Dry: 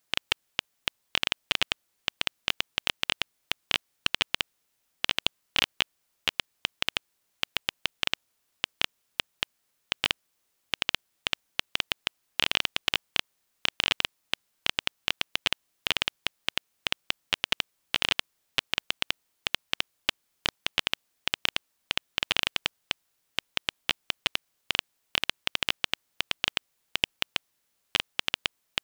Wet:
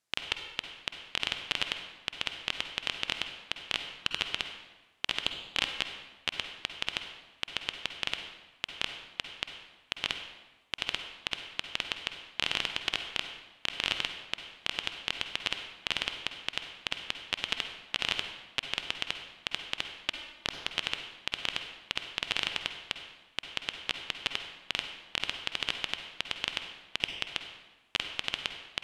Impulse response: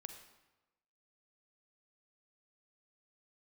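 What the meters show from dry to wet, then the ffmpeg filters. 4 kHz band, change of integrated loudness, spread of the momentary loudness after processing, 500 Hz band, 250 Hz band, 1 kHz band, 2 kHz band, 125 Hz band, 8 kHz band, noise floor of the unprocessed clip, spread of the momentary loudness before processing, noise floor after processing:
-4.0 dB, -4.0 dB, 7 LU, -4.0 dB, -4.0 dB, -4.0 dB, -4.0 dB, -4.0 dB, -5.0 dB, -75 dBFS, 8 LU, -61 dBFS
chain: -filter_complex "[0:a]lowpass=9.5k[a];[1:a]atrim=start_sample=2205,asetrate=37485,aresample=44100[b];[a][b]afir=irnorm=-1:irlink=0"

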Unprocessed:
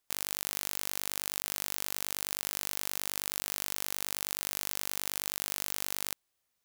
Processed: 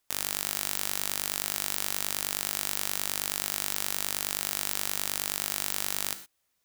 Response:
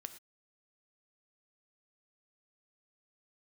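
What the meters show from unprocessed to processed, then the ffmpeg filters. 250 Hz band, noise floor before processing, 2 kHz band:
+4.5 dB, -81 dBFS, +4.5 dB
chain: -filter_complex "[1:a]atrim=start_sample=2205[a];[0:a][a]afir=irnorm=-1:irlink=0,volume=8.5dB"

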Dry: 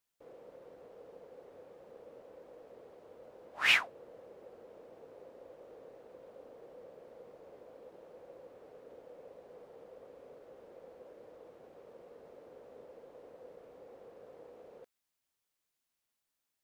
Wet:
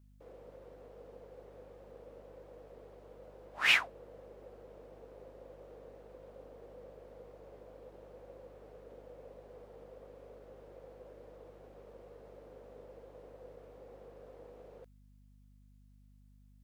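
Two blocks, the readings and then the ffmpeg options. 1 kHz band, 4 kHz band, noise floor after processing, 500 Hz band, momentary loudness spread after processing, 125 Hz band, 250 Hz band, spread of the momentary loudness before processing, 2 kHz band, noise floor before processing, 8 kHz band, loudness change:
0.0 dB, 0.0 dB, -61 dBFS, 0.0 dB, 13 LU, +9.0 dB, +1.0 dB, 13 LU, 0.0 dB, under -85 dBFS, 0.0 dB, -0.5 dB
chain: -af "aeval=exprs='val(0)+0.001*(sin(2*PI*50*n/s)+sin(2*PI*2*50*n/s)/2+sin(2*PI*3*50*n/s)/3+sin(2*PI*4*50*n/s)/4+sin(2*PI*5*50*n/s)/5)':c=same"

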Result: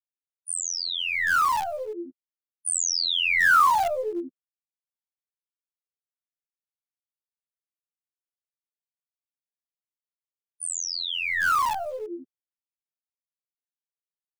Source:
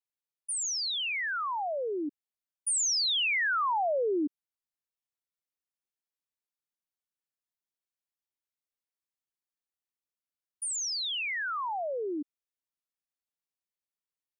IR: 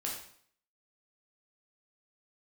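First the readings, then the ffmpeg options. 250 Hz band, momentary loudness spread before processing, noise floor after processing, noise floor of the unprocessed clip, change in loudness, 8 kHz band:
-2.5 dB, 11 LU, under -85 dBFS, under -85 dBFS, +6.0 dB, +2.5 dB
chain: -filter_complex "[0:a]highshelf=f=4.7k:g=6,afftfilt=real='re*gte(hypot(re,im),0.0355)':imag='im*gte(hypot(re,im),0.0355)':win_size=1024:overlap=0.75,afftfilt=real='hypot(re,im)*cos(PI*b)':imag='0':win_size=2048:overlap=0.75,equalizer=f=1.3k:t=o:w=1.7:g=14.5,acrossover=split=780|1300[a][b][c];[b]acrusher=bits=6:dc=4:mix=0:aa=0.000001[d];[a][d][c]amix=inputs=3:normalize=0"

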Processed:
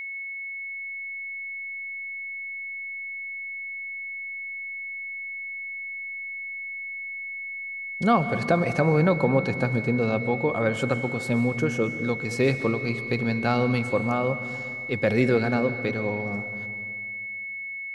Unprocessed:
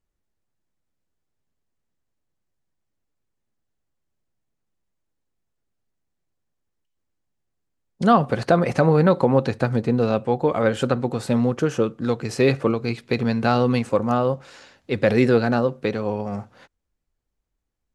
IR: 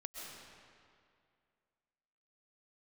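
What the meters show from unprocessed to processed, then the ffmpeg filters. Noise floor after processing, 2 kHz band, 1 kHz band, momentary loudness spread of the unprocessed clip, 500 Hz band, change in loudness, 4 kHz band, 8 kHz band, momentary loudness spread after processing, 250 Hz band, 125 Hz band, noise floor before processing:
-35 dBFS, +6.0 dB, -4.5 dB, 9 LU, -4.5 dB, -6.0 dB, -4.0 dB, -3.5 dB, 10 LU, -3.5 dB, -3.0 dB, -78 dBFS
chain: -filter_complex "[0:a]aeval=exprs='val(0)+0.0447*sin(2*PI*2200*n/s)':c=same,asplit=2[a][b];[1:a]atrim=start_sample=2205,lowshelf=f=210:g=9,highshelf=f=5.4k:g=8[c];[b][c]afir=irnorm=-1:irlink=0,volume=-6dB[d];[a][d]amix=inputs=2:normalize=0,volume=-7dB"

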